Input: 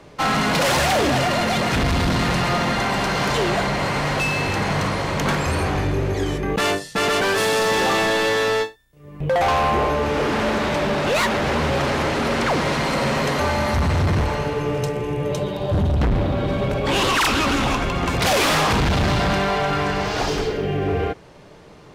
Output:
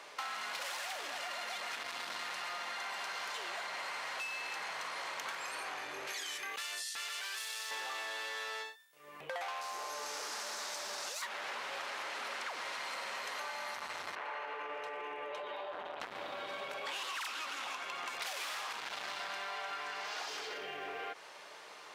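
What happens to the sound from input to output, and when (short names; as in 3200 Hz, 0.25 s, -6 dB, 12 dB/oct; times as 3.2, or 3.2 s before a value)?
6.07–7.71 tilt shelf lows -8.5 dB, about 1400 Hz
9.61–11.22 resonant high shelf 4000 Hz +11.5 dB, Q 1.5
14.15–16 three-band isolator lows -14 dB, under 290 Hz, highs -21 dB, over 2900 Hz
whole clip: limiter -24.5 dBFS; HPF 990 Hz 12 dB/oct; compressor 6:1, threshold -39 dBFS; gain +1 dB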